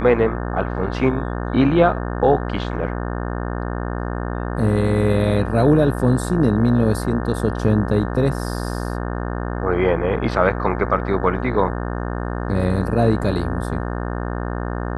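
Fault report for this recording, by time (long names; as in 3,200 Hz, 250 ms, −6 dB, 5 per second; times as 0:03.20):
mains buzz 60 Hz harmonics 30 −25 dBFS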